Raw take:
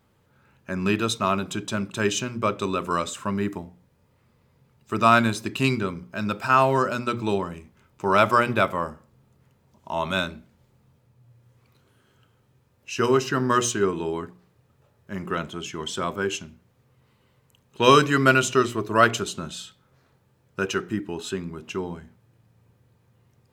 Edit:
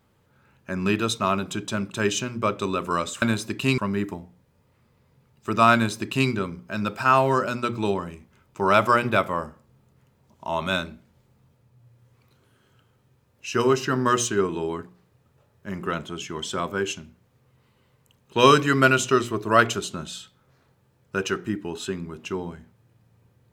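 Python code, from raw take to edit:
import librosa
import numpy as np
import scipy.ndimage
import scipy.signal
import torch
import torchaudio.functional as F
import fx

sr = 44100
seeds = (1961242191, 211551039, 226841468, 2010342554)

y = fx.edit(x, sr, fx.duplicate(start_s=5.18, length_s=0.56, to_s=3.22), tone=tone)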